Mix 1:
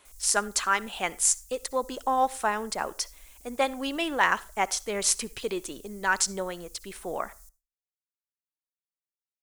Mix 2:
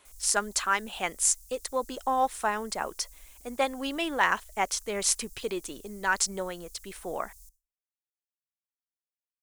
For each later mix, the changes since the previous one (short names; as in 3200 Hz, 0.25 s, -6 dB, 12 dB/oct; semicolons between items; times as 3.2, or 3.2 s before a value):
speech: send off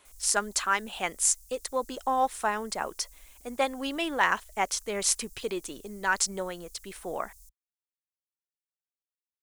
reverb: off